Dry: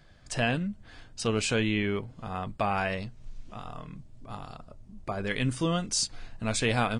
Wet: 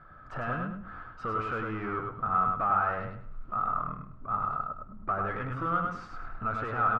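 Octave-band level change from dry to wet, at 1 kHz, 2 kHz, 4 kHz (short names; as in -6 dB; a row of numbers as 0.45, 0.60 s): +6.5 dB, -3.5 dB, under -20 dB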